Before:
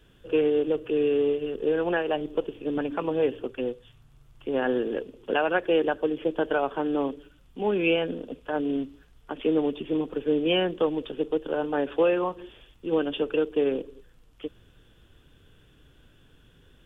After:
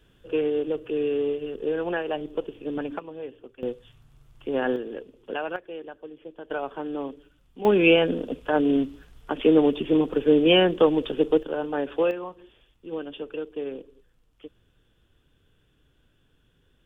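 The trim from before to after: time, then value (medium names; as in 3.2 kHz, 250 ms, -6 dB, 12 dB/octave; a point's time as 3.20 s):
-2 dB
from 2.99 s -12.5 dB
from 3.63 s +0.5 dB
from 4.76 s -6 dB
from 5.56 s -15 dB
from 6.50 s -5 dB
from 7.65 s +6 dB
from 11.43 s -1 dB
from 12.11 s -8 dB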